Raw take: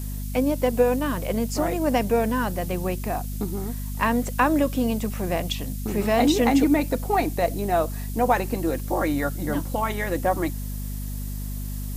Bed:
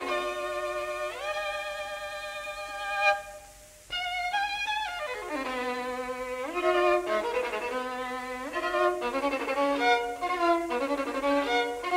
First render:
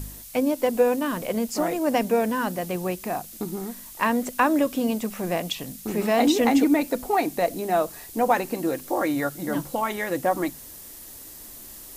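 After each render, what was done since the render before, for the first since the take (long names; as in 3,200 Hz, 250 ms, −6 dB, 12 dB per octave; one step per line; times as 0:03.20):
hum removal 50 Hz, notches 5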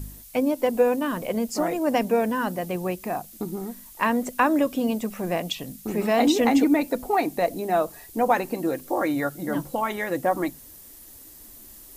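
broadband denoise 6 dB, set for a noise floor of −43 dBFS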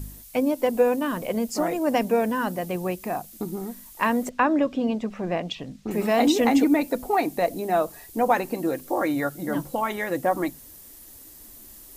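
0:04.29–0:05.91: high-frequency loss of the air 140 metres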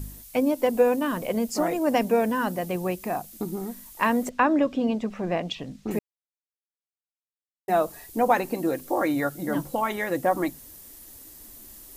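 0:05.99–0:07.68: silence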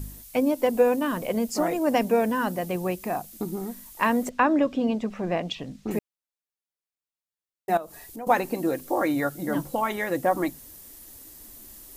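0:07.77–0:08.27: downward compressor 2.5 to 1, threshold −40 dBFS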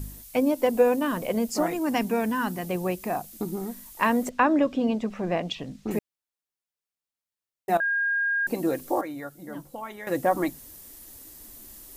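0:01.66–0:02.65: parametric band 560 Hz −12 dB 0.5 octaves
0:07.80–0:08.47: beep over 1,620 Hz −22 dBFS
0:09.01–0:10.07: clip gain −11 dB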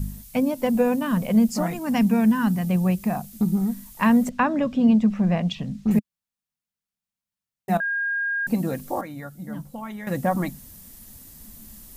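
low shelf with overshoot 260 Hz +7 dB, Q 3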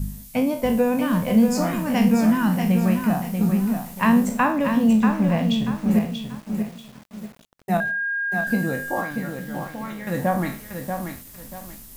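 peak hold with a decay on every bin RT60 0.38 s
feedback echo at a low word length 636 ms, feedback 35%, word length 7 bits, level −6 dB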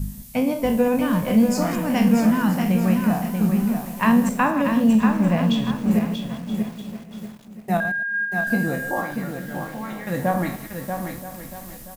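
delay that plays each chunk backwards 110 ms, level −10.5 dB
single-tap delay 976 ms −15.5 dB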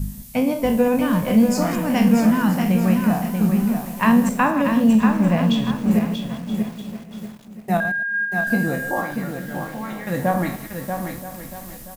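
level +1.5 dB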